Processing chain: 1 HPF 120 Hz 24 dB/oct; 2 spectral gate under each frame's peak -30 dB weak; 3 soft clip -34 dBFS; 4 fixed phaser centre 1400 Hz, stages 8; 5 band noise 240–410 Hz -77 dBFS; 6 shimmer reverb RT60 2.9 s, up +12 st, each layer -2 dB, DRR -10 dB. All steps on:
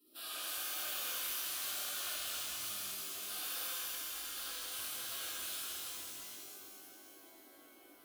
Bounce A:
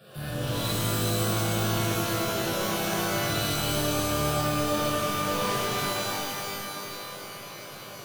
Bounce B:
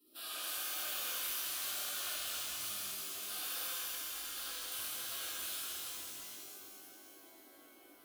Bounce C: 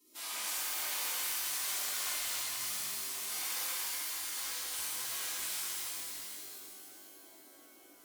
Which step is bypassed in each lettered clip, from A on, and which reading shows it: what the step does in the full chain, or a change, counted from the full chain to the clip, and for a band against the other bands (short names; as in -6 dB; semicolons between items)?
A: 2, 125 Hz band +23.0 dB; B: 3, distortion -21 dB; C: 4, 8 kHz band +3.0 dB